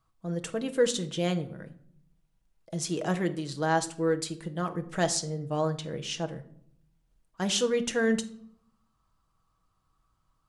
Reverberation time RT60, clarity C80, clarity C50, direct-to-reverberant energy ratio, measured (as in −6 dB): 0.65 s, 18.5 dB, 15.0 dB, 6.5 dB